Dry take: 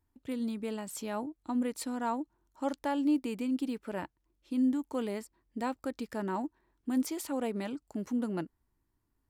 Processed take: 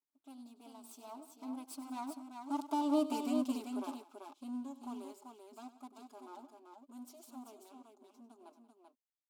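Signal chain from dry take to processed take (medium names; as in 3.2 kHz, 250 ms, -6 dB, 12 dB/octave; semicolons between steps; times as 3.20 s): comb filter that takes the minimum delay 4.6 ms; Doppler pass-by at 3.16 s, 16 m/s, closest 5.1 m; in parallel at -2 dB: compression, threshold -45 dBFS, peak gain reduction 15.5 dB; on the sum: brick-wall FIR high-pass 240 Hz; static phaser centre 490 Hz, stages 6; on a send: multi-tap echo 98/182/388 ms -14.5/-18.5/-5.5 dB; on the sum: trim +2 dB; Opus 96 kbps 48 kHz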